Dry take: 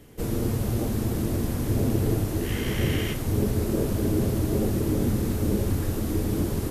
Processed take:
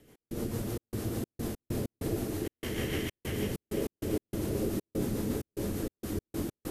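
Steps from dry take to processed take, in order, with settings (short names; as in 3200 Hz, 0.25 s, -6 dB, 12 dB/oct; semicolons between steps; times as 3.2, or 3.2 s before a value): rotary speaker horn 6.7 Hz; split-band echo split 340 Hz, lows 0.114 s, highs 0.342 s, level -4 dB; step gate "x.xxx.xx.x.x.xx" 97 bpm -60 dB; low shelf 170 Hz -9.5 dB; gain -4 dB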